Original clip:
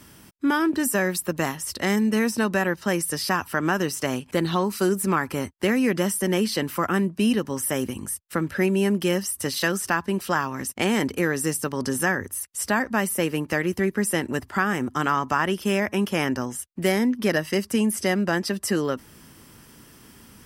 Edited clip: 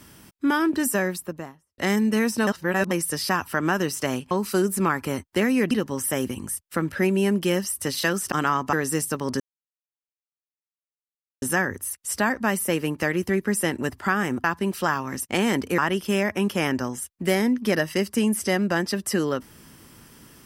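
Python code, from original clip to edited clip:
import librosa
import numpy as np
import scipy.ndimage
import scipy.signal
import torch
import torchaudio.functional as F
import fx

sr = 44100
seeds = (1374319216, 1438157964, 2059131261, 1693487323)

y = fx.studio_fade_out(x, sr, start_s=0.85, length_s=0.93)
y = fx.edit(y, sr, fx.reverse_span(start_s=2.47, length_s=0.44),
    fx.cut(start_s=4.31, length_s=0.27),
    fx.cut(start_s=5.98, length_s=1.32),
    fx.swap(start_s=9.91, length_s=1.34, other_s=14.94, other_length_s=0.41),
    fx.insert_silence(at_s=11.92, length_s=2.02), tone=tone)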